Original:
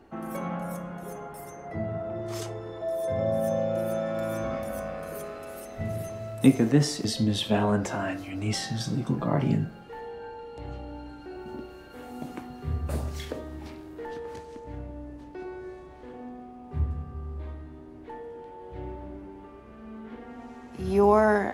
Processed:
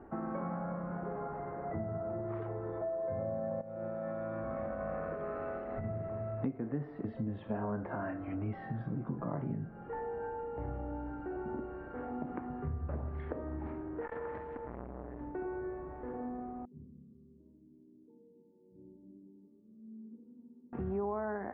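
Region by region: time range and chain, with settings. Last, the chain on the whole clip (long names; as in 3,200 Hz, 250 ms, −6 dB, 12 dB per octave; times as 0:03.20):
0:03.61–0:05.86: high-shelf EQ 3,500 Hz +8.5 dB + compressor whose output falls as the input rises −35 dBFS + one half of a high-frequency compander decoder only
0:14.01–0:15.20: flat-topped bell 3,500 Hz +9 dB 2.5 octaves + saturating transformer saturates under 1,100 Hz
0:16.65–0:20.73: flat-topped band-pass 230 Hz, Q 3.4 + comb filter 2 ms, depth 79%
whole clip: downward compressor 5 to 1, threshold −37 dBFS; inverse Chebyshev low-pass filter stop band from 6,900 Hz, stop band 70 dB; level +2 dB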